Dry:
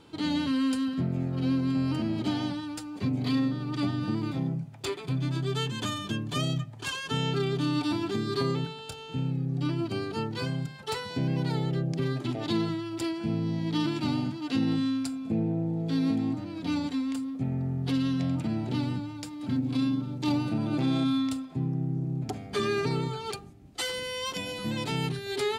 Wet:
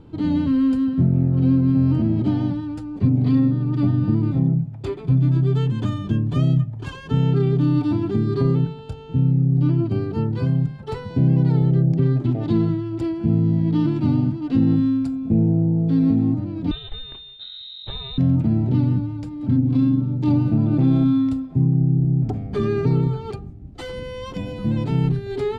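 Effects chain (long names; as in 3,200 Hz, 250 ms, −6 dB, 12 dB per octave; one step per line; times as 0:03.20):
0:16.71–0:18.18: voice inversion scrambler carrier 3,900 Hz
spectral tilt −4.5 dB per octave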